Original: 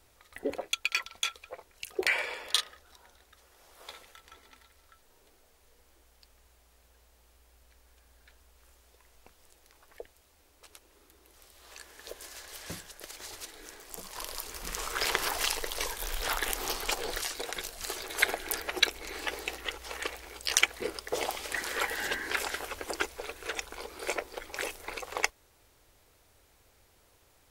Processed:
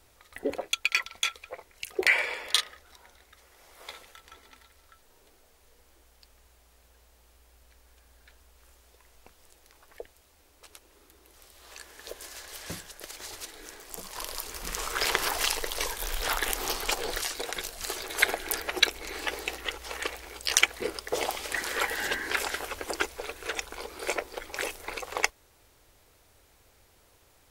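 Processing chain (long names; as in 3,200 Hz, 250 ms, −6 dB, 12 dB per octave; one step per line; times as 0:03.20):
0:00.83–0:03.94: parametric band 2,100 Hz +6 dB 0.24 octaves
level +2.5 dB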